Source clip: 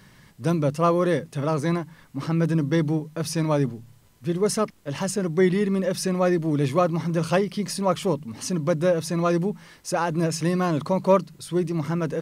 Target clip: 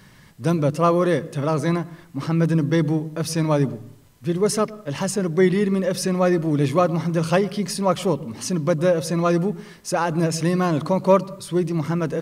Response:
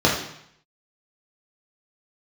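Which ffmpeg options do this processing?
-filter_complex "[0:a]asplit=2[s0][s1];[1:a]atrim=start_sample=2205,lowpass=3900,adelay=105[s2];[s1][s2]afir=irnorm=-1:irlink=0,volume=0.00944[s3];[s0][s3]amix=inputs=2:normalize=0,volume=1.33"

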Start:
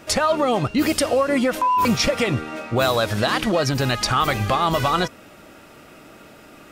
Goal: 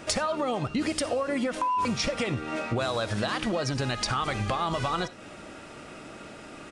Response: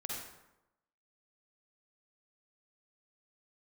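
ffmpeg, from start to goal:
-filter_complex "[0:a]acompressor=threshold=0.0447:ratio=6,asplit=2[s0][s1];[1:a]atrim=start_sample=2205,atrim=end_sample=4410[s2];[s1][s2]afir=irnorm=-1:irlink=0,volume=0.266[s3];[s0][s3]amix=inputs=2:normalize=0,aresample=22050,aresample=44100"

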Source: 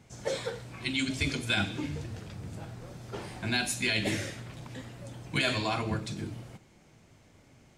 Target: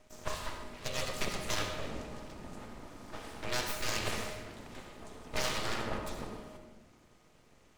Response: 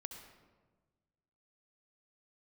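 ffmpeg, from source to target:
-filter_complex "[0:a]aeval=exprs='val(0)*sin(2*PI*310*n/s)':c=same,aeval=exprs='abs(val(0))':c=same[s0];[1:a]atrim=start_sample=2205[s1];[s0][s1]afir=irnorm=-1:irlink=0,volume=1.68"

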